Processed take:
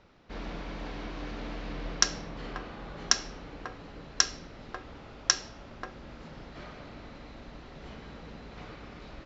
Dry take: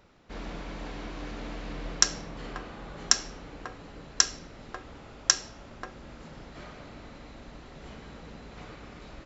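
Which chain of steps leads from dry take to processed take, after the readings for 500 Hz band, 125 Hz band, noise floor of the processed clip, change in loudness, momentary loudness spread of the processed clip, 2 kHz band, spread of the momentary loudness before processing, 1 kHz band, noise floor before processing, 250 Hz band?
0.0 dB, 0.0 dB, -49 dBFS, -3.5 dB, 19 LU, 0.0 dB, 21 LU, 0.0 dB, -49 dBFS, 0.0 dB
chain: LPF 5900 Hz 24 dB/oct

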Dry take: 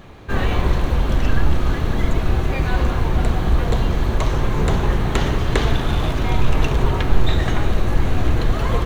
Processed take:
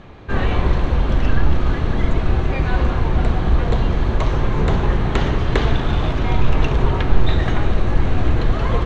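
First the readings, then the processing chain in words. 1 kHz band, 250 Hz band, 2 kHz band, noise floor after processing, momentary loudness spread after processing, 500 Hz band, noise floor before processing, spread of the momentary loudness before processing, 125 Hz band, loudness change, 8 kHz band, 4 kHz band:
+0.5 dB, +1.0 dB, 0.0 dB, -22 dBFS, 2 LU, +0.5 dB, -23 dBFS, 2 LU, +1.0 dB, +1.0 dB, n/a, -1.5 dB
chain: air absorption 110 m; gain +1 dB

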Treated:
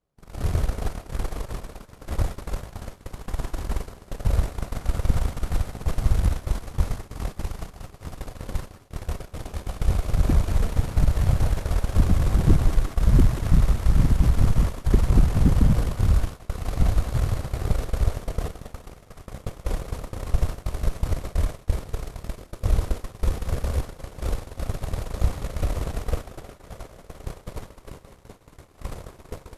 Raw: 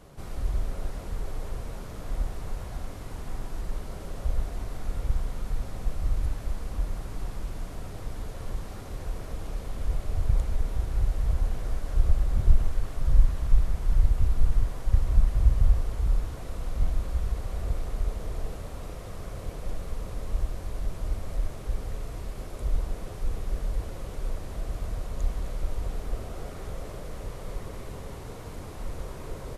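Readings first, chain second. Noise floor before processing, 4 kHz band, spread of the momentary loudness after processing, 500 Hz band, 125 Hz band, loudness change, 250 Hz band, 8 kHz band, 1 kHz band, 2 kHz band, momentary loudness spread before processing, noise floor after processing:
-39 dBFS, +7.0 dB, 19 LU, +6.5 dB, +7.0 dB, +6.5 dB, +12.0 dB, n/a, +6.5 dB, +7.0 dB, 13 LU, -51 dBFS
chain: added harmonics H 8 -6 dB, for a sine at -6 dBFS; in parallel at +2.5 dB: compressor, threshold -27 dBFS, peak gain reduction 17 dB; on the sum: thinning echo 0.188 s, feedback 85%, high-pass 360 Hz, level -9 dB; expander -18 dBFS; gain -3.5 dB

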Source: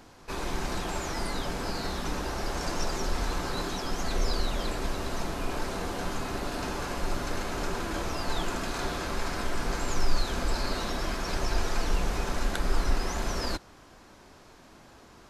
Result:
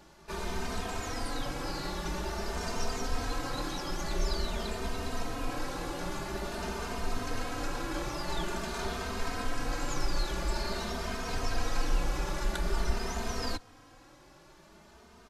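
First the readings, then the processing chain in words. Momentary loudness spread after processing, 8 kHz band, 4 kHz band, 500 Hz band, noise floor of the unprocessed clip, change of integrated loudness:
3 LU, -3.0 dB, -3.0 dB, -3.0 dB, -53 dBFS, -3.0 dB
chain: endless flanger 3 ms +0.48 Hz

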